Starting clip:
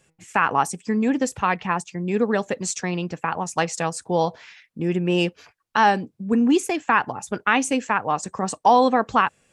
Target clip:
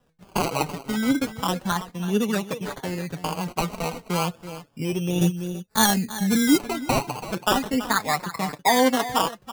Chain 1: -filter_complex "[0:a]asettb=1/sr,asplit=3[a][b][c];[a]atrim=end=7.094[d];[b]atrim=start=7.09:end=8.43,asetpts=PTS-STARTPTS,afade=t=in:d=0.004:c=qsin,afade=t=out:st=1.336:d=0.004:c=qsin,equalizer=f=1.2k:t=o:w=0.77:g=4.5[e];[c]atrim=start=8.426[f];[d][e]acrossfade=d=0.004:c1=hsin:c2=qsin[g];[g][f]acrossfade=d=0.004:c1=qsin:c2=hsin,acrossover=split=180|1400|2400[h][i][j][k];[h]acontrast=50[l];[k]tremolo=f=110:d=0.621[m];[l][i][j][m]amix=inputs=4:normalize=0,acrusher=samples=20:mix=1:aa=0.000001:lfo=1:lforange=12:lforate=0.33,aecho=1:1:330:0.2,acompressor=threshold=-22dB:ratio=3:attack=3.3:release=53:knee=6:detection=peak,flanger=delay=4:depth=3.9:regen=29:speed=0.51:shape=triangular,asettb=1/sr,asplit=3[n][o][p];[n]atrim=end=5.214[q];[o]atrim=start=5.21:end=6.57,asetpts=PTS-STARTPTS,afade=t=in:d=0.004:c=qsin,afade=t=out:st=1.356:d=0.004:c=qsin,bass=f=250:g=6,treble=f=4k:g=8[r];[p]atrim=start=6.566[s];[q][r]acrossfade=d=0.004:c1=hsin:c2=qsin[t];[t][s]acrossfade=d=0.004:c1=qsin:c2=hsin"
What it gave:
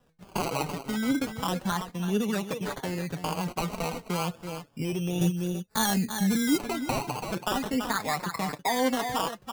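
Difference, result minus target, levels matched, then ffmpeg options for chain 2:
compressor: peak gain reduction +9.5 dB
-filter_complex "[0:a]asettb=1/sr,asplit=3[a][b][c];[a]atrim=end=7.094[d];[b]atrim=start=7.09:end=8.43,asetpts=PTS-STARTPTS,afade=t=in:d=0.004:c=qsin,afade=t=out:st=1.336:d=0.004:c=qsin,equalizer=f=1.2k:t=o:w=0.77:g=4.5[e];[c]atrim=start=8.426[f];[d][e]acrossfade=d=0.004:c1=hsin:c2=qsin[g];[g][f]acrossfade=d=0.004:c1=qsin:c2=hsin,acrossover=split=180|1400|2400[h][i][j][k];[h]acontrast=50[l];[k]tremolo=f=110:d=0.621[m];[l][i][j][m]amix=inputs=4:normalize=0,acrusher=samples=20:mix=1:aa=0.000001:lfo=1:lforange=12:lforate=0.33,aecho=1:1:330:0.2,flanger=delay=4:depth=3.9:regen=29:speed=0.51:shape=triangular,asettb=1/sr,asplit=3[n][o][p];[n]atrim=end=5.214[q];[o]atrim=start=5.21:end=6.57,asetpts=PTS-STARTPTS,afade=t=in:d=0.004:c=qsin,afade=t=out:st=1.356:d=0.004:c=qsin,bass=f=250:g=6,treble=f=4k:g=8[r];[p]atrim=start=6.566[s];[q][r]acrossfade=d=0.004:c1=hsin:c2=qsin[t];[t][s]acrossfade=d=0.004:c1=qsin:c2=hsin"

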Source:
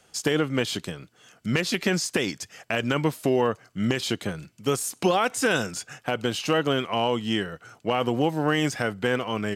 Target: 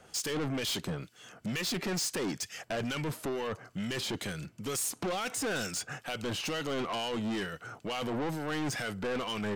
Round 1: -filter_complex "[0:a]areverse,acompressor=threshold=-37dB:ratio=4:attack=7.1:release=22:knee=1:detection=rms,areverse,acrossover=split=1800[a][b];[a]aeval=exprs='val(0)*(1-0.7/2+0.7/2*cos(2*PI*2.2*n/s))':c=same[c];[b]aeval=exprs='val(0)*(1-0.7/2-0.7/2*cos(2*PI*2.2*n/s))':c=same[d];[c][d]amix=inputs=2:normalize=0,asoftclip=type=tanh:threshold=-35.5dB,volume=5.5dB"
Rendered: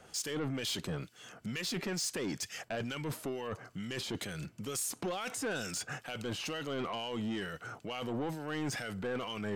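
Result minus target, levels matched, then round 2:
compressor: peak gain reduction +8 dB
-filter_complex "[0:a]areverse,acompressor=threshold=-26dB:ratio=4:attack=7.1:release=22:knee=1:detection=rms,areverse,acrossover=split=1800[a][b];[a]aeval=exprs='val(0)*(1-0.7/2+0.7/2*cos(2*PI*2.2*n/s))':c=same[c];[b]aeval=exprs='val(0)*(1-0.7/2-0.7/2*cos(2*PI*2.2*n/s))':c=same[d];[c][d]amix=inputs=2:normalize=0,asoftclip=type=tanh:threshold=-35.5dB,volume=5.5dB"

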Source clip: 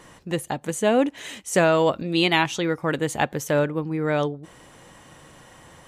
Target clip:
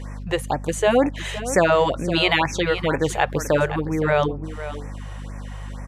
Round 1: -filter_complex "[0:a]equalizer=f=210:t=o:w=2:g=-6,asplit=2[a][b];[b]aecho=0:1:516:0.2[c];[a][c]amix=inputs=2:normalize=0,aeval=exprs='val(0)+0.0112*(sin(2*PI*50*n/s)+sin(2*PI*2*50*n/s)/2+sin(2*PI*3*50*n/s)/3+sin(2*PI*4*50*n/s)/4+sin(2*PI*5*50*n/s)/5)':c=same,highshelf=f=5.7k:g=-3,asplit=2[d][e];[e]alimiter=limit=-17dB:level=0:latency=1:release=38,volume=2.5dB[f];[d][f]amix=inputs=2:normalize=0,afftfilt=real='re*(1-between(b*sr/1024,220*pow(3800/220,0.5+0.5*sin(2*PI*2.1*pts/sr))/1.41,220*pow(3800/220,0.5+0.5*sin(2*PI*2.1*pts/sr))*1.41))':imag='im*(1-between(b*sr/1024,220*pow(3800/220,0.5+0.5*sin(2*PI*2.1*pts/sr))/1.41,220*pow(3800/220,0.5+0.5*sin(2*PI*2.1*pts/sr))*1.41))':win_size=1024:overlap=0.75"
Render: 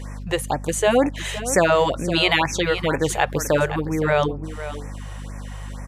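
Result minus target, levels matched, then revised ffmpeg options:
8000 Hz band +4.5 dB
-filter_complex "[0:a]equalizer=f=210:t=o:w=2:g=-6,asplit=2[a][b];[b]aecho=0:1:516:0.2[c];[a][c]amix=inputs=2:normalize=0,aeval=exprs='val(0)+0.0112*(sin(2*PI*50*n/s)+sin(2*PI*2*50*n/s)/2+sin(2*PI*3*50*n/s)/3+sin(2*PI*4*50*n/s)/4+sin(2*PI*5*50*n/s)/5)':c=same,highshelf=f=5.7k:g=-10.5,asplit=2[d][e];[e]alimiter=limit=-17dB:level=0:latency=1:release=38,volume=2.5dB[f];[d][f]amix=inputs=2:normalize=0,afftfilt=real='re*(1-between(b*sr/1024,220*pow(3800/220,0.5+0.5*sin(2*PI*2.1*pts/sr))/1.41,220*pow(3800/220,0.5+0.5*sin(2*PI*2.1*pts/sr))*1.41))':imag='im*(1-between(b*sr/1024,220*pow(3800/220,0.5+0.5*sin(2*PI*2.1*pts/sr))/1.41,220*pow(3800/220,0.5+0.5*sin(2*PI*2.1*pts/sr))*1.41))':win_size=1024:overlap=0.75"

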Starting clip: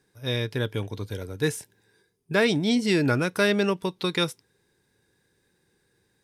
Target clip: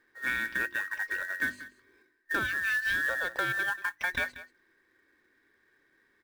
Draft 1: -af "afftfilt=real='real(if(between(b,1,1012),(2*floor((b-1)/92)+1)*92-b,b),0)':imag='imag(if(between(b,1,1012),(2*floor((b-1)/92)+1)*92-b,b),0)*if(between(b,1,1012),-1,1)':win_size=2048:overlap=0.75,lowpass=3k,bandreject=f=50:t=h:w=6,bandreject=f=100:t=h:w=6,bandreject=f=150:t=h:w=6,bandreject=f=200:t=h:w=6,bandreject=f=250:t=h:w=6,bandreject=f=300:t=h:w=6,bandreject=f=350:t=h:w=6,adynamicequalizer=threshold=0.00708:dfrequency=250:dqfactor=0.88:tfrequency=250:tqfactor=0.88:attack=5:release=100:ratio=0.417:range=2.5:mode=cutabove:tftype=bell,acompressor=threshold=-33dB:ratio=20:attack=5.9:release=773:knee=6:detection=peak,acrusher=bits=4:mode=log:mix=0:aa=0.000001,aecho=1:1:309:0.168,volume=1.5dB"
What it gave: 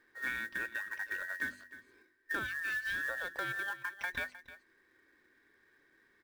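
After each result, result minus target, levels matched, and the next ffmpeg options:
echo 0.124 s late; compressor: peak gain reduction +7 dB
-af "afftfilt=real='real(if(between(b,1,1012),(2*floor((b-1)/92)+1)*92-b,b),0)':imag='imag(if(between(b,1,1012),(2*floor((b-1)/92)+1)*92-b,b),0)*if(between(b,1,1012),-1,1)':win_size=2048:overlap=0.75,lowpass=3k,bandreject=f=50:t=h:w=6,bandreject=f=100:t=h:w=6,bandreject=f=150:t=h:w=6,bandreject=f=200:t=h:w=6,bandreject=f=250:t=h:w=6,bandreject=f=300:t=h:w=6,bandreject=f=350:t=h:w=6,adynamicequalizer=threshold=0.00708:dfrequency=250:dqfactor=0.88:tfrequency=250:tqfactor=0.88:attack=5:release=100:ratio=0.417:range=2.5:mode=cutabove:tftype=bell,acompressor=threshold=-33dB:ratio=20:attack=5.9:release=773:knee=6:detection=peak,acrusher=bits=4:mode=log:mix=0:aa=0.000001,aecho=1:1:185:0.168,volume=1.5dB"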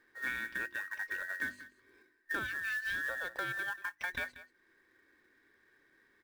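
compressor: peak gain reduction +7 dB
-af "afftfilt=real='real(if(between(b,1,1012),(2*floor((b-1)/92)+1)*92-b,b),0)':imag='imag(if(between(b,1,1012),(2*floor((b-1)/92)+1)*92-b,b),0)*if(between(b,1,1012),-1,1)':win_size=2048:overlap=0.75,lowpass=3k,bandreject=f=50:t=h:w=6,bandreject=f=100:t=h:w=6,bandreject=f=150:t=h:w=6,bandreject=f=200:t=h:w=6,bandreject=f=250:t=h:w=6,bandreject=f=300:t=h:w=6,bandreject=f=350:t=h:w=6,adynamicequalizer=threshold=0.00708:dfrequency=250:dqfactor=0.88:tfrequency=250:tqfactor=0.88:attack=5:release=100:ratio=0.417:range=2.5:mode=cutabove:tftype=bell,acompressor=threshold=-25.5dB:ratio=20:attack=5.9:release=773:knee=6:detection=peak,acrusher=bits=4:mode=log:mix=0:aa=0.000001,aecho=1:1:185:0.168,volume=1.5dB"

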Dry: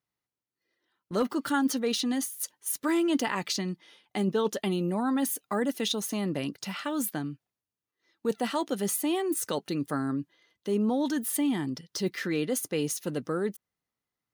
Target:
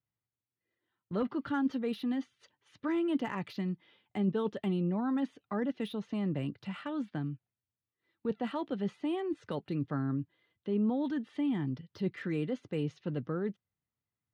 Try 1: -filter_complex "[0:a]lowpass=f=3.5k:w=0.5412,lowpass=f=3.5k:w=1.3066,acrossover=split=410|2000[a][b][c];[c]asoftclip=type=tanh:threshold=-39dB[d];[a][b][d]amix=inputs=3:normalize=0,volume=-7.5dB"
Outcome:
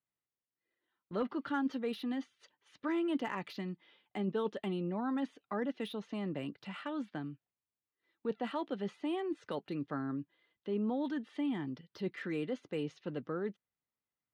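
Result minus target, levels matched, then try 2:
125 Hz band -4.5 dB
-filter_complex "[0:a]lowpass=f=3.5k:w=0.5412,lowpass=f=3.5k:w=1.3066,equalizer=f=100:w=0.81:g=14,acrossover=split=410|2000[a][b][c];[c]asoftclip=type=tanh:threshold=-39dB[d];[a][b][d]amix=inputs=3:normalize=0,volume=-7.5dB"

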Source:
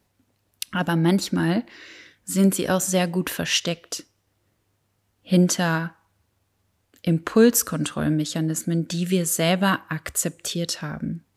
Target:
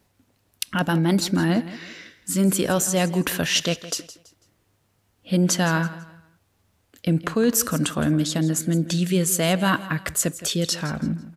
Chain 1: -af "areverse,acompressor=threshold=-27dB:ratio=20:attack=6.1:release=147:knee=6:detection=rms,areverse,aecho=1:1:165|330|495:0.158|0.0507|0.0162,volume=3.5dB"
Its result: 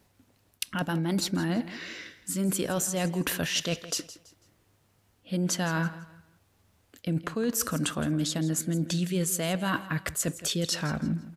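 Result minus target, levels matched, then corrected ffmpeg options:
compressor: peak gain reduction +9 dB
-af "areverse,acompressor=threshold=-17.5dB:ratio=20:attack=6.1:release=147:knee=6:detection=rms,areverse,aecho=1:1:165|330|495:0.158|0.0507|0.0162,volume=3.5dB"

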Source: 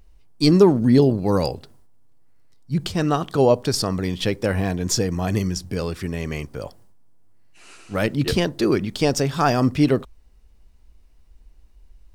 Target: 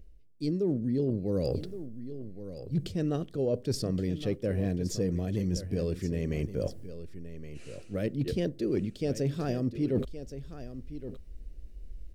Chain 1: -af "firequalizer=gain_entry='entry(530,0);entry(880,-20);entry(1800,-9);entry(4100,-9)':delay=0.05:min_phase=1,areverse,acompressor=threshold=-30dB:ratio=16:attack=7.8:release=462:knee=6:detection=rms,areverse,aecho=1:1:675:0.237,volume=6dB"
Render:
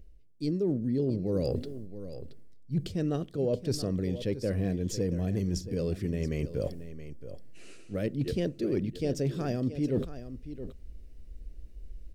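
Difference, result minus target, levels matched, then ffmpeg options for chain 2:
echo 0.444 s early
-af "firequalizer=gain_entry='entry(530,0);entry(880,-20);entry(1800,-9);entry(4100,-9)':delay=0.05:min_phase=1,areverse,acompressor=threshold=-30dB:ratio=16:attack=7.8:release=462:knee=6:detection=rms,areverse,aecho=1:1:1119:0.237,volume=6dB"

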